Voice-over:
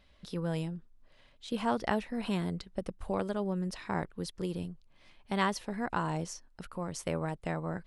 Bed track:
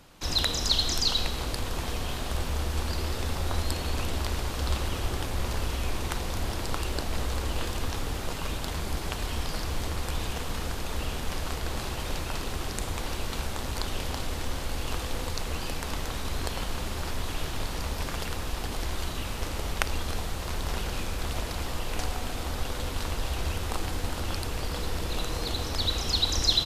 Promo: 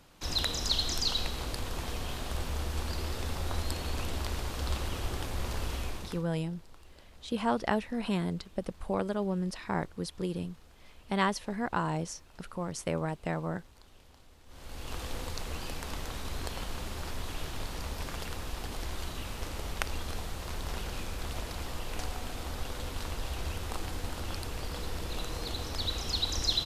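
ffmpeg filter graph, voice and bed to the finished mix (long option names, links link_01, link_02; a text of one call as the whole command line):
ffmpeg -i stem1.wav -i stem2.wav -filter_complex "[0:a]adelay=5800,volume=1.5dB[link_01];[1:a]volume=16dB,afade=type=out:start_time=5.77:duration=0.49:silence=0.0841395,afade=type=in:start_time=14.46:duration=0.59:silence=0.0944061[link_02];[link_01][link_02]amix=inputs=2:normalize=0" out.wav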